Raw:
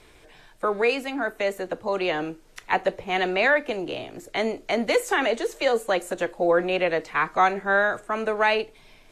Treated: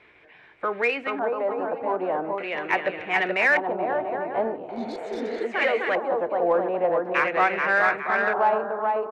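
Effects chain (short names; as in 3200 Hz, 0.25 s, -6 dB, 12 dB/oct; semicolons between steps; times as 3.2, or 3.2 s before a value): HPF 67 Hz; low shelf 130 Hz -8.5 dB; bouncing-ball echo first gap 0.43 s, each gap 0.6×, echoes 5; LFO low-pass square 0.42 Hz 940–2200 Hz; in parallel at -8 dB: soft clip -16 dBFS, distortion -12 dB; on the sum: spectral repair 4.72–5.42, 420–3400 Hz both; gain -6 dB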